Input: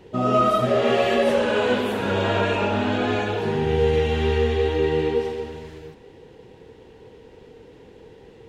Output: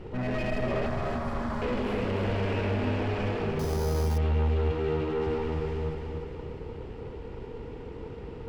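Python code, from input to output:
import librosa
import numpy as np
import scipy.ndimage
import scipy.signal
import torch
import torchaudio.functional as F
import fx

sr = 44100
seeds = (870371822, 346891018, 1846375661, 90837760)

p1 = fx.lower_of_two(x, sr, delay_ms=0.39)
p2 = fx.lowpass(p1, sr, hz=2000.0, slope=6)
p3 = fx.low_shelf(p2, sr, hz=85.0, db=12.0)
p4 = fx.highpass(p3, sr, hz=61.0, slope=24, at=(4.71, 5.27))
p5 = fx.over_compress(p4, sr, threshold_db=-30.0, ratio=-1.0)
p6 = p4 + (p5 * librosa.db_to_amplitude(1.0))
p7 = fx.fixed_phaser(p6, sr, hz=1100.0, stages=4, at=(0.86, 1.62))
p8 = 10.0 ** (-17.0 / 20.0) * np.tanh(p7 / 10.0 ** (-17.0 / 20.0))
p9 = p8 + fx.echo_feedback(p8, sr, ms=295, feedback_pct=54, wet_db=-5.5, dry=0)
p10 = fx.resample_bad(p9, sr, factor=8, down='filtered', up='hold', at=(3.59, 4.18))
y = p10 * librosa.db_to_amplitude(-8.0)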